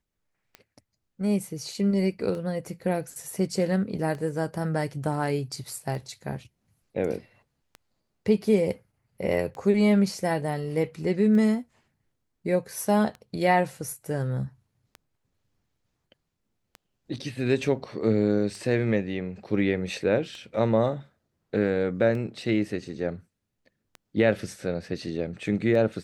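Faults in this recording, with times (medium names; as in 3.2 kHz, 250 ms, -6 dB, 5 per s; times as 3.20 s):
tick 33 1/3 rpm -25 dBFS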